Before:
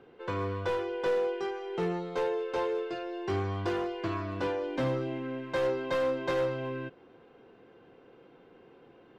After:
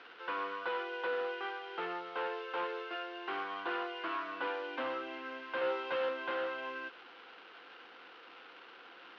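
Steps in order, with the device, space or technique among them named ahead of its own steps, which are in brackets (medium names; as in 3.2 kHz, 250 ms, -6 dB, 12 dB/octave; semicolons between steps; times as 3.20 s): digital answering machine (band-pass 350–3100 Hz; one-bit delta coder 32 kbps, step -46.5 dBFS; cabinet simulation 390–3900 Hz, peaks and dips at 410 Hz -9 dB, 600 Hz -8 dB, 1.4 kHz +7 dB, 2.9 kHz +6 dB); 5.60–6.09 s: doubling 13 ms -2 dB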